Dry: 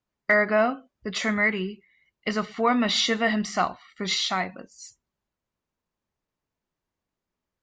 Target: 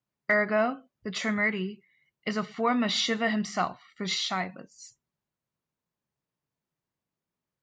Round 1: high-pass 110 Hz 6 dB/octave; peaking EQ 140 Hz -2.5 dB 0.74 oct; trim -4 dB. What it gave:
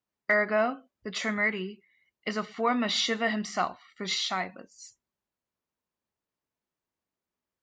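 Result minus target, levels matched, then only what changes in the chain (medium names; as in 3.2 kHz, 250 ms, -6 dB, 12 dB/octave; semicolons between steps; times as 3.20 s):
125 Hz band -4.0 dB
change: peaking EQ 140 Hz +9 dB 0.74 oct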